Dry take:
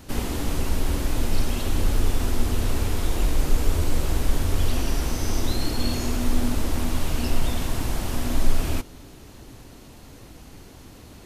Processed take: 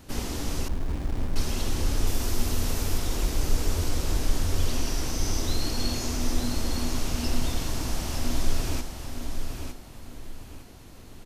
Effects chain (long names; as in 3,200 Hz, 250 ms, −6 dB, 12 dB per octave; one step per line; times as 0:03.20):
0:02.07–0:02.98: high-shelf EQ 11,000 Hz +10.5 dB
repeating echo 907 ms, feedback 33%, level −6.5 dB
dynamic equaliser 5,600 Hz, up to +7 dB, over −50 dBFS, Q 1.5
0:00.68–0:01.36: windowed peak hold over 65 samples
level −4.5 dB